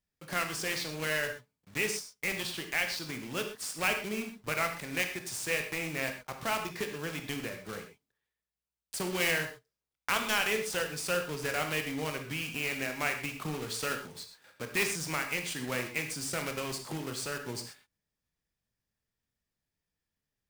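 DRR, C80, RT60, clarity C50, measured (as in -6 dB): 5.0 dB, 11.0 dB, not exponential, 7.5 dB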